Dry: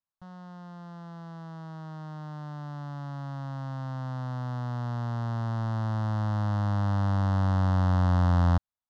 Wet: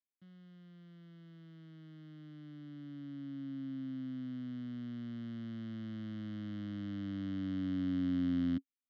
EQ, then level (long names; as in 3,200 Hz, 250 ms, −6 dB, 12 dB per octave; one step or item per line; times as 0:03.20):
formant filter i
high-pass filter 91 Hz
+5.5 dB